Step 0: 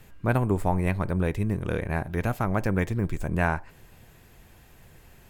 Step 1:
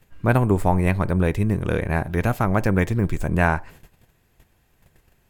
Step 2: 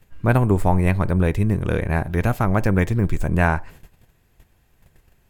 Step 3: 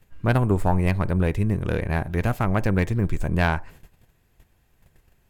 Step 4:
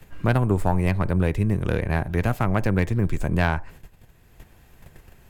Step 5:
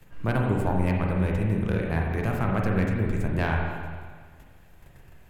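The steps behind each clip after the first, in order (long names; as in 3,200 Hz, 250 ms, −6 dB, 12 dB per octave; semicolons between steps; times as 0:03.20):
noise gate −48 dBFS, range −15 dB; level +5.5 dB
low-shelf EQ 91 Hz +5 dB
phase distortion by the signal itself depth 0.1 ms; level −3 dB
multiband upward and downward compressor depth 40%
convolution reverb RT60 1.7 s, pre-delay 37 ms, DRR −0.5 dB; level −6 dB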